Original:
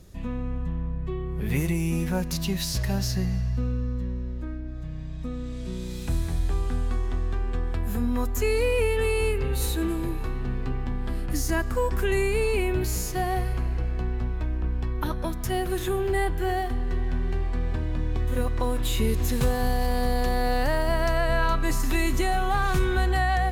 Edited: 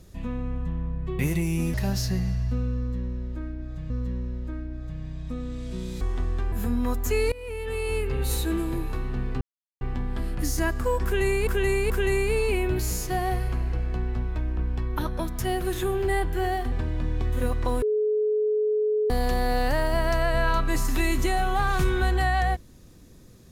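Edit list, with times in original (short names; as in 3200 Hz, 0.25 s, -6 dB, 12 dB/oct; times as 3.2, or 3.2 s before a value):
1.19–1.52 cut
2.07–2.8 cut
3.84–4.96 loop, 2 plays
5.95–6.95 cut
7.46–7.83 cut
8.63–9.52 fade in, from -21.5 dB
10.72 insert silence 0.40 s
11.95–12.38 loop, 3 plays
16.77–17.67 cut
18.77–20.05 bleep 426 Hz -20.5 dBFS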